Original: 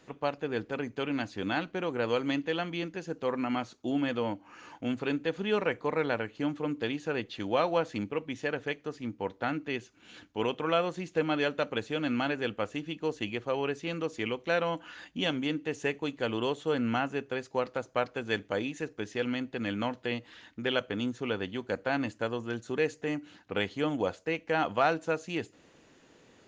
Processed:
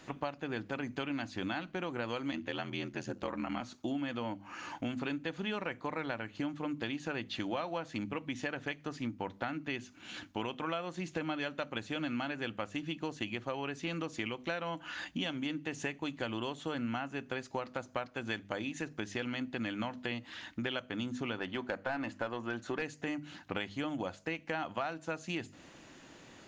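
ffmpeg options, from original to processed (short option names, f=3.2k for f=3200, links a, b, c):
-filter_complex "[0:a]asettb=1/sr,asplit=3[a][b][c];[a]atrim=end=2.314[d];[b]atrim=start=2.31:end=3.61,asetpts=PTS-STARTPTS,afade=t=in:d=0.004:c=qsin,afade=t=out:st=1.296:d=0.004:c=qsin,aeval=exprs='val(0)*sin(2*PI*42*n/s)':c=same[e];[c]atrim=start=3.606[f];[d][e]acrossfade=d=0.004:c1=hsin:c2=qsin[g];[g][f]acrossfade=d=0.004:c1=qsin:c2=hsin,asettb=1/sr,asplit=3[h][i][j];[h]atrim=end=21.384[k];[i]atrim=start=21.38:end=22.82,asetpts=PTS-STARTPTS,afade=t=in:d=0.004:c=qsin,afade=t=out:st=1.436:d=0.004:c=qsin,asplit=2[l][m];[m]highpass=f=720:p=1,volume=14dB,asoftclip=type=tanh:threshold=-15.5dB[n];[l][n]amix=inputs=2:normalize=0,lowpass=f=1.4k:p=1,volume=-6dB[o];[j]atrim=start=22.816[p];[k][o]acrossfade=d=0.004:c1=hsin:c2=qsin[q];[q][p]acrossfade=d=0.004:c1=qsin:c2=hsin,equalizer=f=450:t=o:w=0.35:g=-10,bandreject=f=50:t=h:w=6,bandreject=f=100:t=h:w=6,bandreject=f=150:t=h:w=6,bandreject=f=200:t=h:w=6,bandreject=f=250:t=h:w=6,acompressor=threshold=-40dB:ratio=6,volume=6dB"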